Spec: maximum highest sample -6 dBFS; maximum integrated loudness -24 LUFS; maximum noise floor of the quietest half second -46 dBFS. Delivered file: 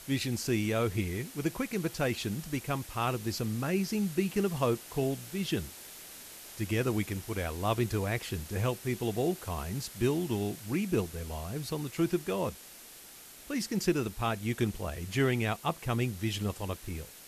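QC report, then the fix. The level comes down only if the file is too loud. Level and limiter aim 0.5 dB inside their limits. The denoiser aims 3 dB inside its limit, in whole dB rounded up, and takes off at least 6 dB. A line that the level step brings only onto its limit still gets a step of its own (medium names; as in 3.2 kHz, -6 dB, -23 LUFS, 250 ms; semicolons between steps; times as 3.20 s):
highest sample -15.0 dBFS: pass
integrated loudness -32.5 LUFS: pass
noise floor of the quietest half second -51 dBFS: pass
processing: none needed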